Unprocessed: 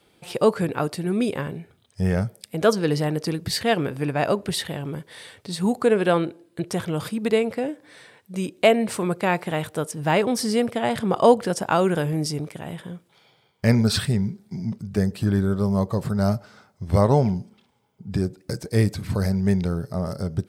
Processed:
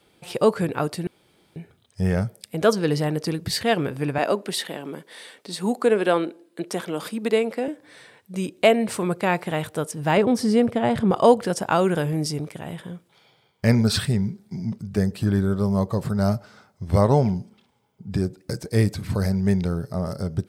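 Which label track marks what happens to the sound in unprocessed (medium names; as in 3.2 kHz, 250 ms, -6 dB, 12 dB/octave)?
1.070000	1.560000	room tone
4.180000	7.680000	high-pass 210 Hz 24 dB/octave
10.170000	11.110000	tilt EQ -2 dB/octave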